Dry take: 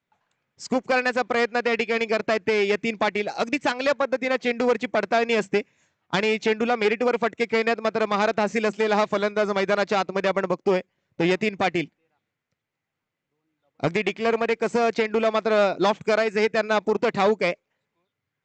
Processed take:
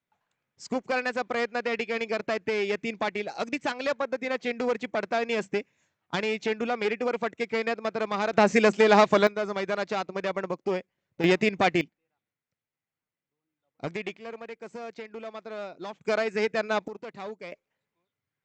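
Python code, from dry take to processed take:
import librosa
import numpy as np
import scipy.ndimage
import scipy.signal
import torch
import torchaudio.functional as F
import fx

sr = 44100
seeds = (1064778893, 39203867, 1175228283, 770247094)

y = fx.gain(x, sr, db=fx.steps((0.0, -6.0), (8.33, 3.0), (9.27, -7.0), (11.24, 0.0), (11.81, -10.0), (14.17, -17.5), (16.05, -5.0), (16.88, -18.0), (17.52, -6.0)))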